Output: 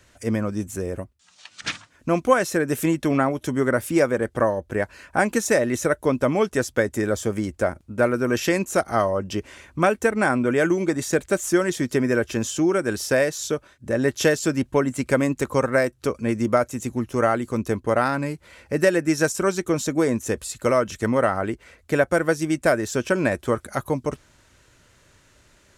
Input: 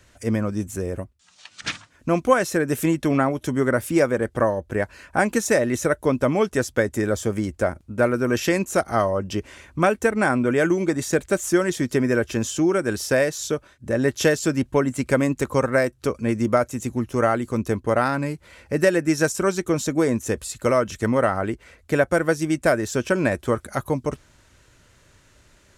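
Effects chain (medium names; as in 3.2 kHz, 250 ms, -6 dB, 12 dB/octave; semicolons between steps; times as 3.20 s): bass shelf 130 Hz -3.5 dB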